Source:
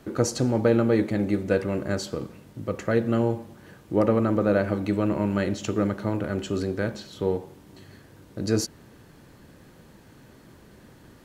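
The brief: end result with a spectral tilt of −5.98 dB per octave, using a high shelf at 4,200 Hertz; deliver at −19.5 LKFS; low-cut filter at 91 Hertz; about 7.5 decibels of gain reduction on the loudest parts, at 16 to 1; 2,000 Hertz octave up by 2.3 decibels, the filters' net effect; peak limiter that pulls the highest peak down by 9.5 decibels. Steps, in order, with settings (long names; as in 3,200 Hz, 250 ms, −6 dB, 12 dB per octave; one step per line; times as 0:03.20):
high-pass filter 91 Hz
parametric band 2,000 Hz +4.5 dB
high-shelf EQ 4,200 Hz −6.5 dB
downward compressor 16 to 1, threshold −23 dBFS
level +13.5 dB
brickwall limiter −7.5 dBFS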